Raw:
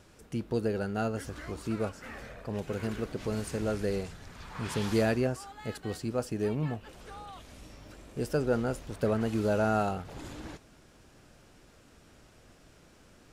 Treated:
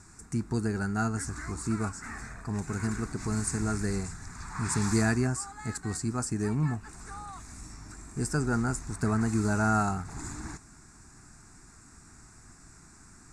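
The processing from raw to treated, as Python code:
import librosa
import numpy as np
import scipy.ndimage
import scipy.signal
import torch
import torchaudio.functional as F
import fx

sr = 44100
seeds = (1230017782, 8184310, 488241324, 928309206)

y = fx.lowpass_res(x, sr, hz=7900.0, q=4.0)
y = fx.fixed_phaser(y, sr, hz=1300.0, stages=4)
y = F.gain(torch.from_numpy(y), 5.5).numpy()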